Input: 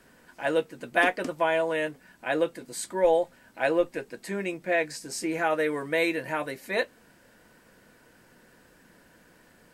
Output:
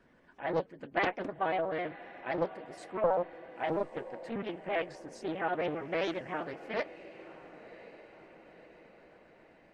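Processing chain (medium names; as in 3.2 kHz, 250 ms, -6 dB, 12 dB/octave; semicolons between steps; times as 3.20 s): pitch shift switched off and on +2.5 st, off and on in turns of 66 ms; spectral gate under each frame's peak -30 dB strong; tape spacing loss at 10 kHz 22 dB; on a send: echo that smears into a reverb 1060 ms, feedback 52%, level -16 dB; on the sum: loudspeaker Doppler distortion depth 0.49 ms; trim -4.5 dB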